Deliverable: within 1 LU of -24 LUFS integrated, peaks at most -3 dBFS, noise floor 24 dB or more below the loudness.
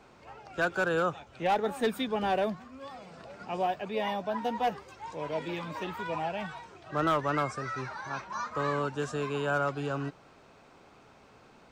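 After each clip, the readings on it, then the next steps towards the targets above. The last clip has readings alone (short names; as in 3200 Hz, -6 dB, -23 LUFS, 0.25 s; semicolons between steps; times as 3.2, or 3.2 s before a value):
clipped 0.4%; flat tops at -20.5 dBFS; loudness -32.0 LUFS; peak -20.5 dBFS; loudness target -24.0 LUFS
-> clip repair -20.5 dBFS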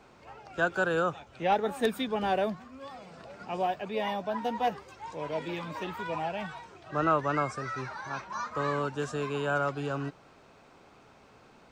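clipped 0.0%; loudness -31.5 LUFS; peak -12.5 dBFS; loudness target -24.0 LUFS
-> gain +7.5 dB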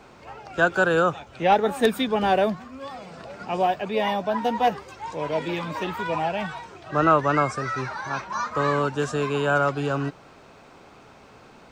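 loudness -24.0 LUFS; peak -5.0 dBFS; noise floor -50 dBFS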